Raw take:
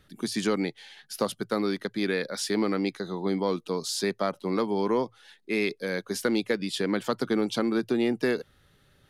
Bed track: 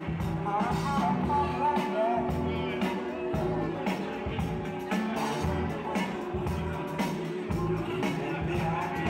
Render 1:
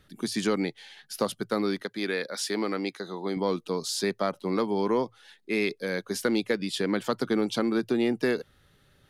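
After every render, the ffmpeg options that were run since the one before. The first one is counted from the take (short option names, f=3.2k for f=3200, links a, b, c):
-filter_complex "[0:a]asettb=1/sr,asplit=3[a][b][c];[a]atrim=end=1.824[d];[b]atrim=start=1.82:end=3.37,asetpts=PTS-STARTPTS,afade=t=in:d=0.004:c=qsin,afade=t=out:st=1.546:d=0.004:c=qsin,highpass=f=340:p=1[e];[c]atrim=start=3.366[f];[d][e]acrossfade=d=0.004:c1=hsin:c2=qsin[g];[g][f]acrossfade=d=0.004:c1=qsin:c2=hsin"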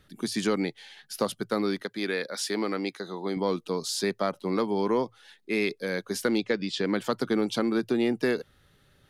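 -filter_complex "[0:a]asettb=1/sr,asplit=3[a][b][c];[a]atrim=end=6.384[d];[b]atrim=start=6.38:end=6.85,asetpts=PTS-STARTPTS,afade=t=in:d=0.004:c=qsin,afade=t=out:st=0.466:d=0.004:c=qsin,lowpass=f=6.7k:w=0.5412,lowpass=f=6.7k:w=1.3066[e];[c]atrim=start=6.846[f];[d][e]acrossfade=d=0.004:c1=hsin:c2=qsin[g];[g][f]acrossfade=d=0.004:c1=qsin:c2=hsin"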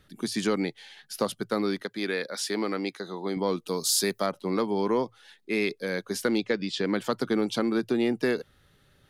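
-filter_complex "[0:a]asplit=3[a][b][c];[a]afade=t=out:st=3.66:d=0.02[d];[b]aemphasis=mode=production:type=50fm,afade=t=in:st=3.66:d=0.02,afade=t=out:st=4.25:d=0.02[e];[c]afade=t=in:st=4.25:d=0.02[f];[d][e][f]amix=inputs=3:normalize=0"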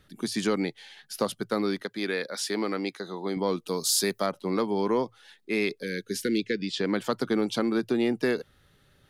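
-filter_complex "[0:a]asettb=1/sr,asplit=3[a][b][c];[a]atrim=end=5.834[d];[b]atrim=start=5.83:end=6.7,asetpts=PTS-STARTPTS,afade=t=in:d=0.004:c=qsin,afade=t=out:st=0.866:d=0.004:c=qsin,asuperstop=centerf=870:order=8:qfactor=0.77[e];[c]atrim=start=6.696[f];[d][e]acrossfade=d=0.004:c1=hsin:c2=qsin[g];[g][f]acrossfade=d=0.004:c1=qsin:c2=hsin"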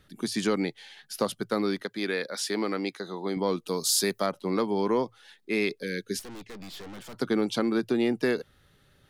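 -filter_complex "[0:a]asettb=1/sr,asplit=3[a][b][c];[a]atrim=end=6.194[d];[b]atrim=start=6.19:end=7.16,asetpts=PTS-STARTPTS,afade=t=in:d=0.004:c=qsin,afade=t=out:st=0.966:d=0.004:c=qsin,aeval=exprs='(tanh(112*val(0)+0.65)-tanh(0.65))/112':c=same[e];[c]atrim=start=7.156[f];[d][e]acrossfade=d=0.004:c1=hsin:c2=qsin[g];[g][f]acrossfade=d=0.004:c1=qsin:c2=hsin"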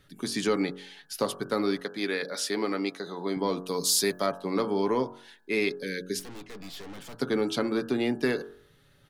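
-af "aecho=1:1:7.1:0.32,bandreject=f=45.99:t=h:w=4,bandreject=f=91.98:t=h:w=4,bandreject=f=137.97:t=h:w=4,bandreject=f=183.96:t=h:w=4,bandreject=f=229.95:t=h:w=4,bandreject=f=275.94:t=h:w=4,bandreject=f=321.93:t=h:w=4,bandreject=f=367.92:t=h:w=4,bandreject=f=413.91:t=h:w=4,bandreject=f=459.9:t=h:w=4,bandreject=f=505.89:t=h:w=4,bandreject=f=551.88:t=h:w=4,bandreject=f=597.87:t=h:w=4,bandreject=f=643.86:t=h:w=4,bandreject=f=689.85:t=h:w=4,bandreject=f=735.84:t=h:w=4,bandreject=f=781.83:t=h:w=4,bandreject=f=827.82:t=h:w=4,bandreject=f=873.81:t=h:w=4,bandreject=f=919.8:t=h:w=4,bandreject=f=965.79:t=h:w=4,bandreject=f=1.01178k:t=h:w=4,bandreject=f=1.05777k:t=h:w=4,bandreject=f=1.10376k:t=h:w=4,bandreject=f=1.14975k:t=h:w=4,bandreject=f=1.19574k:t=h:w=4,bandreject=f=1.24173k:t=h:w=4,bandreject=f=1.28772k:t=h:w=4,bandreject=f=1.33371k:t=h:w=4,bandreject=f=1.3797k:t=h:w=4,bandreject=f=1.42569k:t=h:w=4,bandreject=f=1.47168k:t=h:w=4,bandreject=f=1.51767k:t=h:w=4,bandreject=f=1.56366k:t=h:w=4,bandreject=f=1.60965k:t=h:w=4,bandreject=f=1.65564k:t=h:w=4,bandreject=f=1.70163k:t=h:w=4"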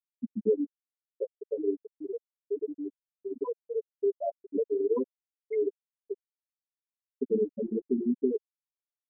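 -af "afftfilt=real='re*gte(hypot(re,im),0.316)':imag='im*gte(hypot(re,im),0.316)':win_size=1024:overlap=0.75,aecho=1:1:4.6:0.5"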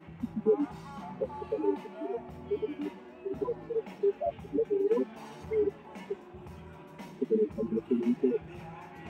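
-filter_complex "[1:a]volume=-15.5dB[a];[0:a][a]amix=inputs=2:normalize=0"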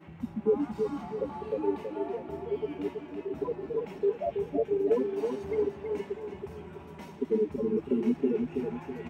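-filter_complex "[0:a]asplit=2[a][b];[b]adelay=326,lowpass=f=3.8k:p=1,volume=-5dB,asplit=2[c][d];[d]adelay=326,lowpass=f=3.8k:p=1,volume=0.46,asplit=2[e][f];[f]adelay=326,lowpass=f=3.8k:p=1,volume=0.46,asplit=2[g][h];[h]adelay=326,lowpass=f=3.8k:p=1,volume=0.46,asplit=2[i][j];[j]adelay=326,lowpass=f=3.8k:p=1,volume=0.46,asplit=2[k][l];[l]adelay=326,lowpass=f=3.8k:p=1,volume=0.46[m];[a][c][e][g][i][k][m]amix=inputs=7:normalize=0"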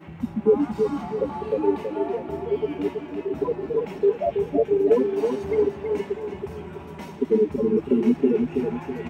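-af "volume=7.5dB"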